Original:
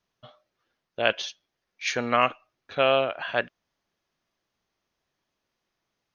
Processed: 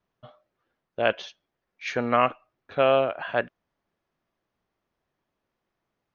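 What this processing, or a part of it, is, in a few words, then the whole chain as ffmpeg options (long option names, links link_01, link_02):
through cloth: -af "highshelf=frequency=3200:gain=-17,volume=2.5dB"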